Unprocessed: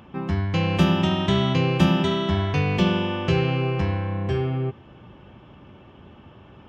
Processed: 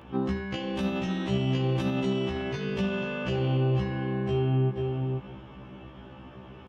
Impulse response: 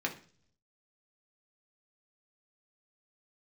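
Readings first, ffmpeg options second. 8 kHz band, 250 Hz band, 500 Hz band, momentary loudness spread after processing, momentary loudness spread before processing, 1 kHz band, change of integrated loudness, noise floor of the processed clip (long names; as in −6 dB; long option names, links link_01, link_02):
can't be measured, −5.5 dB, −4.0 dB, 20 LU, 7 LU, −9.0 dB, −6.0 dB, −47 dBFS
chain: -filter_complex "[0:a]asplit=2[link_01][link_02];[link_02]adelay=484,volume=-10dB,highshelf=frequency=4000:gain=-10.9[link_03];[link_01][link_03]amix=inputs=2:normalize=0,asplit=2[link_04][link_05];[link_05]asoftclip=type=tanh:threshold=-17dB,volume=-6dB[link_06];[link_04][link_06]amix=inputs=2:normalize=0,aresample=32000,aresample=44100,alimiter=limit=-15dB:level=0:latency=1,acompressor=threshold=-23dB:ratio=6,asplit=2[link_07][link_08];[1:a]atrim=start_sample=2205,adelay=81[link_09];[link_08][link_09]afir=irnorm=-1:irlink=0,volume=-16dB[link_10];[link_07][link_10]amix=inputs=2:normalize=0,afftfilt=real='re*1.73*eq(mod(b,3),0)':imag='im*1.73*eq(mod(b,3),0)':win_size=2048:overlap=0.75"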